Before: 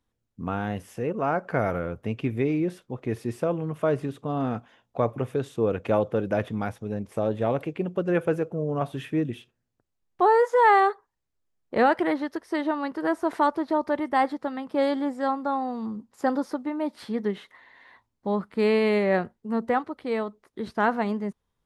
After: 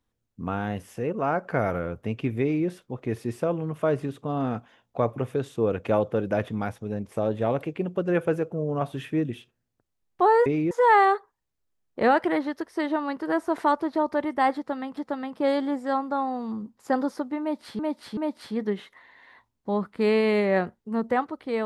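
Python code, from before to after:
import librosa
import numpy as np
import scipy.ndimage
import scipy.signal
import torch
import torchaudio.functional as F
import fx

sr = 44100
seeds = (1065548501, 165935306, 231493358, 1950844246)

y = fx.edit(x, sr, fx.duplicate(start_s=2.42, length_s=0.25, to_s=10.46),
    fx.repeat(start_s=14.31, length_s=0.41, count=2),
    fx.repeat(start_s=16.75, length_s=0.38, count=3), tone=tone)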